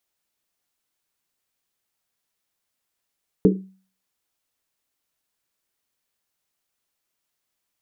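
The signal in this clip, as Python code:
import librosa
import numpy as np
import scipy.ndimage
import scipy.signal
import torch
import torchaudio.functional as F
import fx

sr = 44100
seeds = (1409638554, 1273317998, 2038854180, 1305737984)

y = fx.risset_drum(sr, seeds[0], length_s=1.1, hz=190.0, decay_s=0.42, noise_hz=360.0, noise_width_hz=160.0, noise_pct=45)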